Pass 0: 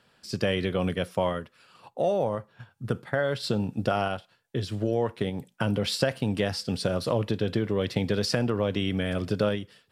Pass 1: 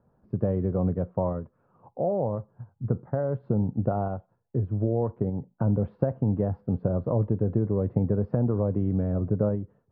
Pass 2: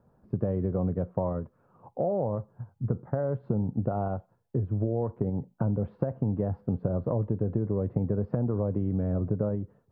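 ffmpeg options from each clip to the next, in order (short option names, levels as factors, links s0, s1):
-af "lowpass=f=1000:w=0.5412,lowpass=f=1000:w=1.3066,lowshelf=f=170:g=11,volume=0.75"
-af "acompressor=threshold=0.0447:ratio=3,volume=1.26"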